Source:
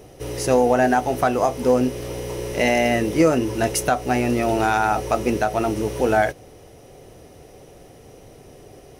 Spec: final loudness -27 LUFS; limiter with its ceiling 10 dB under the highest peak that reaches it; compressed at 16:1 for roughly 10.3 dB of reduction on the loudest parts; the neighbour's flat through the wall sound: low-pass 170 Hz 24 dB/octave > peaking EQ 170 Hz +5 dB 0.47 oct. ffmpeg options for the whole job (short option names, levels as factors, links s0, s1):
-af "acompressor=threshold=0.0794:ratio=16,alimiter=limit=0.1:level=0:latency=1,lowpass=f=170:w=0.5412,lowpass=f=170:w=1.3066,equalizer=f=170:t=o:w=0.47:g=5,volume=4.47"